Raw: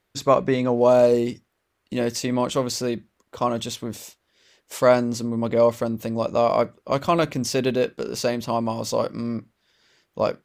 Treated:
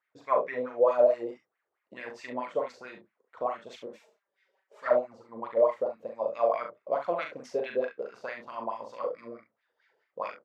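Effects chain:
LFO wah 4.6 Hz 470–2,200 Hz, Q 5.2
0:03.86–0:05.29: flanger swept by the level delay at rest 5.3 ms, full sweep at −20.5 dBFS
ambience of single reflections 40 ms −5 dB, 68 ms −10 dB

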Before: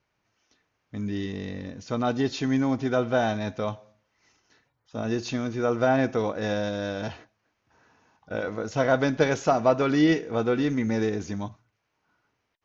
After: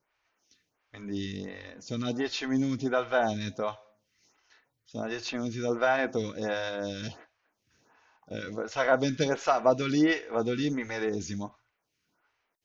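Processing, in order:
tilt shelving filter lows −4 dB, about 1,400 Hz
phaser with staggered stages 1.4 Hz
level +1.5 dB

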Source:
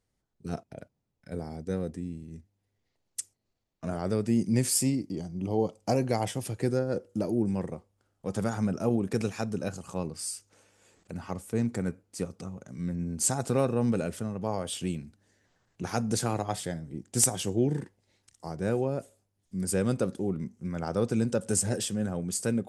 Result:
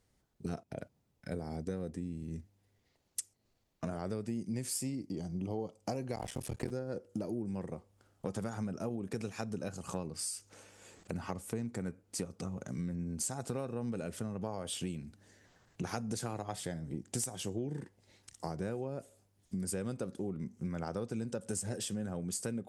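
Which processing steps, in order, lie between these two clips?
0:06.16–0:06.71: sub-harmonics by changed cycles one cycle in 3, muted
harmonic generator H 2 −26 dB, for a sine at −7 dBFS
downward compressor 6 to 1, threshold −41 dBFS, peak gain reduction 20.5 dB
level +5.5 dB

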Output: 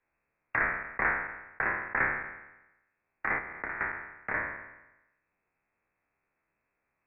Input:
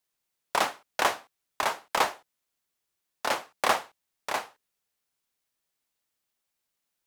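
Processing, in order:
peak hold with a decay on every bin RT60 0.81 s
0:03.38–0:03.81: downward compressor 12 to 1, threshold −31 dBFS, peak gain reduction 16 dB
voice inversion scrambler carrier 2,600 Hz
multiband upward and downward compressor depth 40%
level −4.5 dB

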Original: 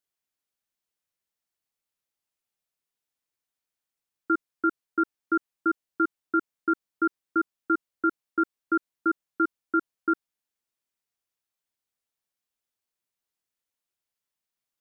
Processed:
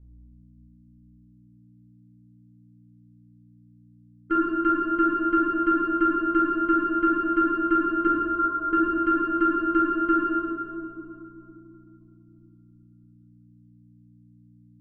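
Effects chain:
noise gate −24 dBFS, range −21 dB
in parallel at +2 dB: downward compressor, threshold −33 dBFS, peak gain reduction 12.5 dB
on the sum: harmonic generator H 2 −19 dB, 4 −44 dB, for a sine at −11.5 dBFS
mains hum 60 Hz, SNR 23 dB
0:08.07–0:08.73: linear-phase brick-wall band-pass 470–1,500 Hz
convolution reverb RT60 2.9 s, pre-delay 12 ms, DRR −4.5 dB
level −7.5 dB

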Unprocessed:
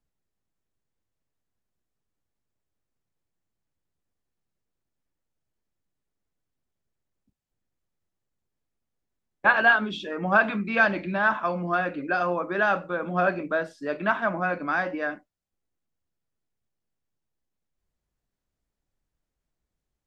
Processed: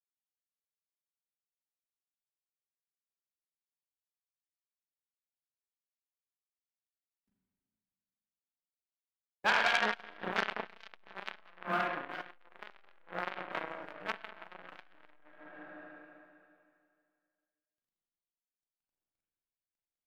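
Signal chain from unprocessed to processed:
mu-law and A-law mismatch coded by A
flanger 0.31 Hz, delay 1.3 ms, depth 7.6 ms, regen +70%
spring reverb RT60 2.3 s, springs 33/37/42 ms, chirp 70 ms, DRR −5 dB
saturating transformer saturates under 3,300 Hz
level −2.5 dB

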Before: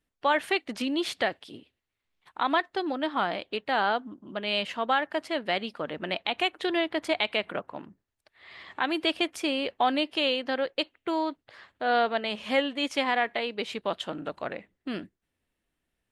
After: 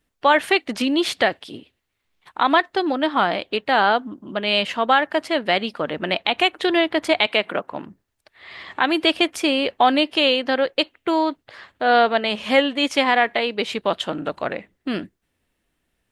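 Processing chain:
0:07.26–0:07.72: high-pass filter 180 Hz 12 dB per octave
level +8.5 dB

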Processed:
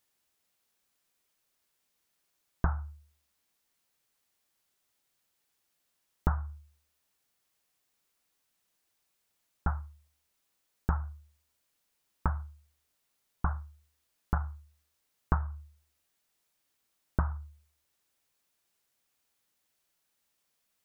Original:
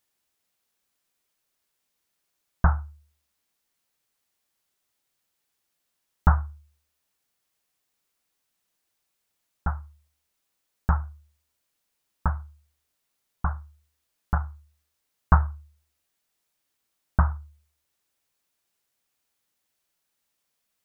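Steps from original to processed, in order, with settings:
downward compressor 6 to 1, threshold −24 dBFS, peak gain reduction 12 dB

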